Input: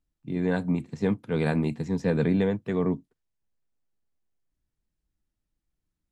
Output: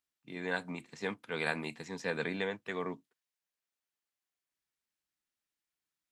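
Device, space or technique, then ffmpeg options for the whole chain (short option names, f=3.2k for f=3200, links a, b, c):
filter by subtraction: -filter_complex "[0:a]asplit=2[a][b];[b]lowpass=2k,volume=-1[c];[a][c]amix=inputs=2:normalize=0"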